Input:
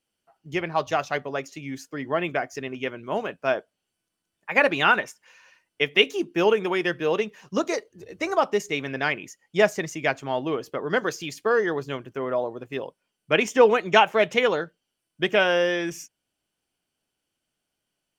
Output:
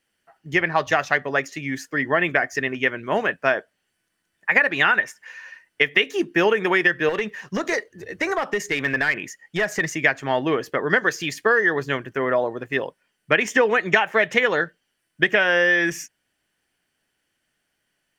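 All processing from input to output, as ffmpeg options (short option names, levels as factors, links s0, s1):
-filter_complex "[0:a]asettb=1/sr,asplit=3[s0][s1][s2];[s0]atrim=end=7.094[s3];[s1]atrim=start=7.09:end=9.93,asetpts=PTS-STARTPTS,afade=t=in:d=0.004:c=qsin,afade=t=out:st=2.836:d=0.004:c=qsin,acompressor=threshold=0.0562:ratio=5:attack=3.2:release=140:knee=1:detection=peak,aeval=exprs='clip(val(0),-1,0.0562)':c=same[s4];[s2]atrim=start=9.926[s5];[s3][s4]acrossfade=d=0.004:c1=hsin:c2=qsin[s6];[s6][s5]acrossfade=d=0.004:c1=qsin:c2=hsin,equalizer=f=1800:t=o:w=0.47:g=13,acompressor=threshold=0.112:ratio=10,volume=1.78"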